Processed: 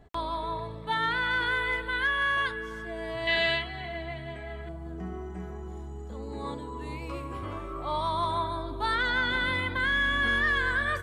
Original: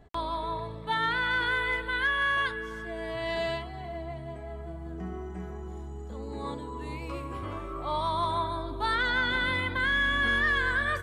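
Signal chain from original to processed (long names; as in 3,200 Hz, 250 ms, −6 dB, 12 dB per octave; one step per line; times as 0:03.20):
0:03.27–0:04.69: flat-topped bell 2,500 Hz +11 dB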